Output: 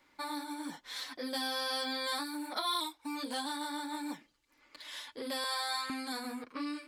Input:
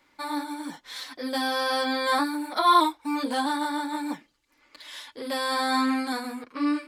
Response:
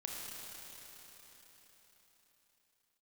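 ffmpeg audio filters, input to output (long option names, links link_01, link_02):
-filter_complex "[0:a]asettb=1/sr,asplit=3[link_01][link_02][link_03];[link_01]atrim=end=5.444[link_04];[link_02]atrim=start=5.44:end=5.9,asetpts=PTS-STARTPTS,afade=type=in:duration=0.004:curve=qsin,afade=type=out:start_time=0.456:duration=0.004:curve=qsin,highpass=frequency=570:width=0.5412,highpass=frequency=570:width=1.3066[link_05];[link_03]atrim=start=5.896[link_06];[link_04][link_05]acrossfade=duration=0.004:curve1=hsin:curve2=qsin[link_07];[link_07][link_06]acrossfade=duration=0.004:curve1=qsin:curve2=hsin,acrossover=split=2600[link_08][link_09];[link_08]acompressor=threshold=-33dB:ratio=6[link_10];[link_10][link_09]amix=inputs=2:normalize=0,volume=-3.5dB"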